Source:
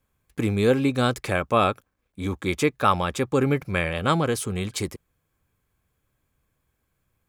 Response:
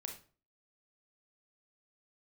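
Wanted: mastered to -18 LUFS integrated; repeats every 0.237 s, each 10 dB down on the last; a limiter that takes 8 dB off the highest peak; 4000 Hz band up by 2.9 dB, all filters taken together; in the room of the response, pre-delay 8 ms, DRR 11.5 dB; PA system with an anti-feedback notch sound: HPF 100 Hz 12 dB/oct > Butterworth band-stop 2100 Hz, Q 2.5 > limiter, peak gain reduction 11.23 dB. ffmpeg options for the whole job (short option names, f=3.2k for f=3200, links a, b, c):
-filter_complex "[0:a]equalizer=f=4k:t=o:g=3.5,alimiter=limit=-12.5dB:level=0:latency=1,aecho=1:1:237|474|711|948:0.316|0.101|0.0324|0.0104,asplit=2[a][b];[1:a]atrim=start_sample=2205,adelay=8[c];[b][c]afir=irnorm=-1:irlink=0,volume=-9dB[d];[a][d]amix=inputs=2:normalize=0,highpass=100,asuperstop=centerf=2100:order=8:qfactor=2.5,volume=13dB,alimiter=limit=-7dB:level=0:latency=1"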